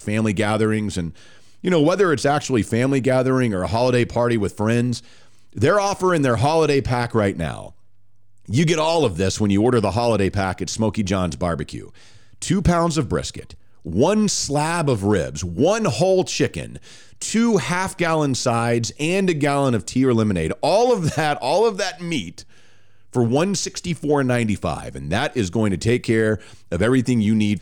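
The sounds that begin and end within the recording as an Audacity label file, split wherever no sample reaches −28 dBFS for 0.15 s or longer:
1.640000	4.980000	sound
5.570000	7.670000	sound
8.490000	11.850000	sound
12.420000	13.500000	sound
13.860000	16.770000	sound
17.220000	22.400000	sound
23.140000	26.360000	sound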